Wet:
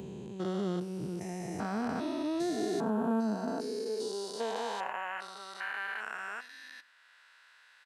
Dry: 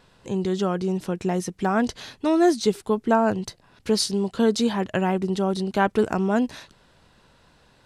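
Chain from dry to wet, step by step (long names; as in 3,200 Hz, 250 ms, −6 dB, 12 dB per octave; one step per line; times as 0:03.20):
spectrum averaged block by block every 400 ms
noise reduction from a noise print of the clip's start 7 dB
high-pass filter sweep 71 Hz → 1,700 Hz, 0:02.15–0:05.45
on a send: single-tap delay 101 ms −23.5 dB
on the sum: multiband upward and downward compressor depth 40%
level −5 dB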